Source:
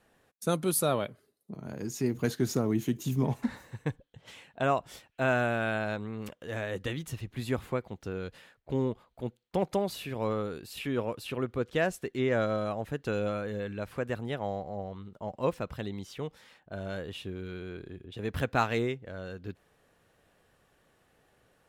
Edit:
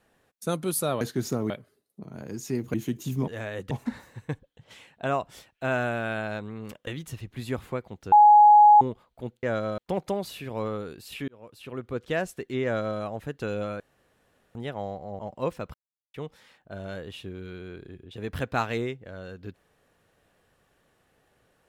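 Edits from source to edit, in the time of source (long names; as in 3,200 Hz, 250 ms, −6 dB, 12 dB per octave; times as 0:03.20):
0:02.25–0:02.74: move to 0:01.01
0:06.44–0:06.87: move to 0:03.28
0:08.12–0:08.81: beep over 836 Hz −10.5 dBFS
0:10.93–0:11.67: fade in
0:12.29–0:12.64: duplicate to 0:09.43
0:13.45–0:14.20: fill with room tone
0:14.84–0:15.20: remove
0:15.75–0:16.15: silence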